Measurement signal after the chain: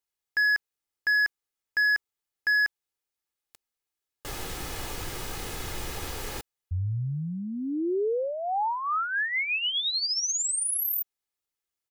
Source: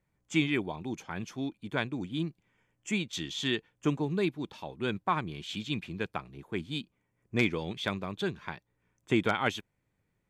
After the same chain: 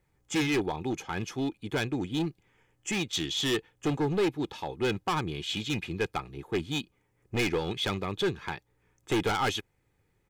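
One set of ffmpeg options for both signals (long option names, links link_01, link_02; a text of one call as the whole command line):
ffmpeg -i in.wav -af "asoftclip=type=hard:threshold=-29.5dB,aecho=1:1:2.4:0.41,volume=5.5dB" out.wav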